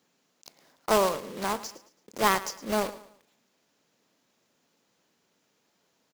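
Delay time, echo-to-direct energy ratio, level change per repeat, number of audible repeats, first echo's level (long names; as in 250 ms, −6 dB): 110 ms, −16.0 dB, −9.0 dB, 3, −16.5 dB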